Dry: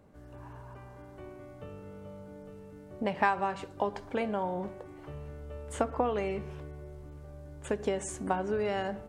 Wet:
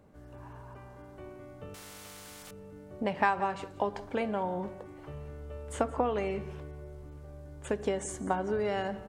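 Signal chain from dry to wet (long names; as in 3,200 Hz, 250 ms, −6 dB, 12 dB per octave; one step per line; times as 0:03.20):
0:07.93–0:08.72: notch filter 2,600 Hz, Q 8.2
single-tap delay 175 ms −19 dB
0:01.74–0:02.51: every bin compressed towards the loudest bin 4 to 1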